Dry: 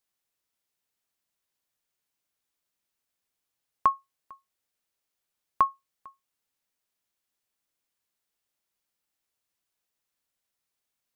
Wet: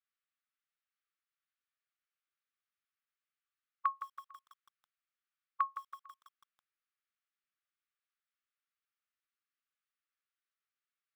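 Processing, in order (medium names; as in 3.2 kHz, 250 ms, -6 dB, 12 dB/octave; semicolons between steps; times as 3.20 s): distance through air 260 m; short-mantissa float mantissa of 8-bit; brick-wall FIR high-pass 1.1 kHz; treble shelf 2.4 kHz -6 dB; bit-crushed delay 164 ms, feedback 55%, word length 9-bit, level -11 dB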